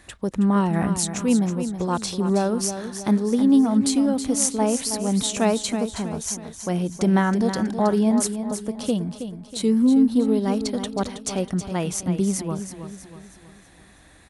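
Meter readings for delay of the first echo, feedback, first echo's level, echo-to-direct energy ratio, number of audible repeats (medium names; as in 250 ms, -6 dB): 321 ms, 45%, -9.5 dB, -8.5 dB, 4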